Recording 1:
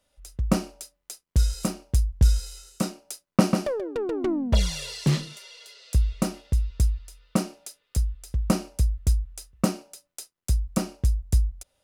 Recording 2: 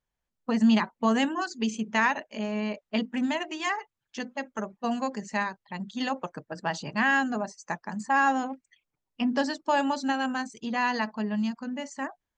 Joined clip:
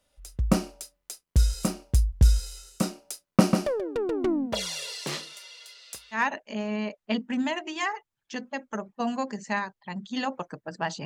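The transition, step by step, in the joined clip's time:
recording 1
4.45–6.23 s: high-pass 290 Hz -> 1 kHz
6.17 s: go over to recording 2 from 2.01 s, crossfade 0.12 s

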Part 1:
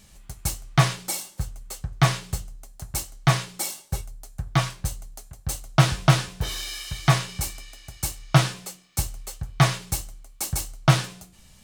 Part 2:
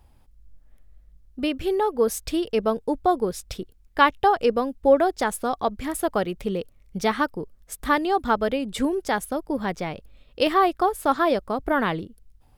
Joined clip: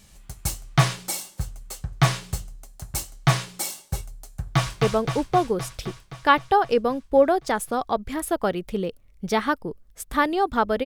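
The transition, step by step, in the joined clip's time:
part 1
4.40–4.82 s: echo throw 260 ms, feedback 70%, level -3.5 dB
4.82 s: go over to part 2 from 2.54 s

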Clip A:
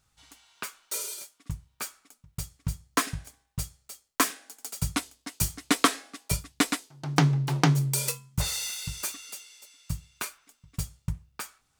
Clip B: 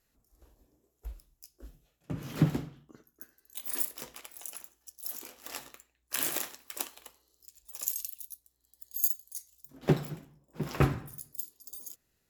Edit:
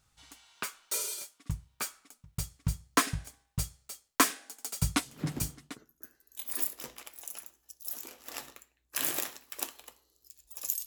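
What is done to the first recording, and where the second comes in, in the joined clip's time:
clip A
5.38 s: go over to clip B from 2.56 s, crossfade 0.84 s linear

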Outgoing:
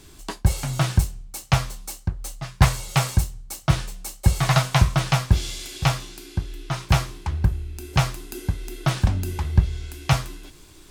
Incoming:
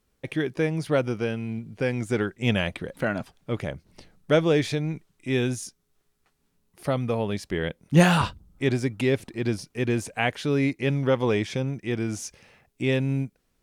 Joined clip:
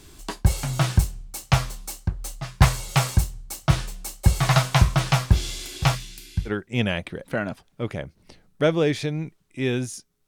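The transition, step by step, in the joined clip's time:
outgoing
5.95–6.51 s: high-order bell 600 Hz -13 dB 2.7 oct
6.48 s: go over to incoming from 2.17 s, crossfade 0.06 s

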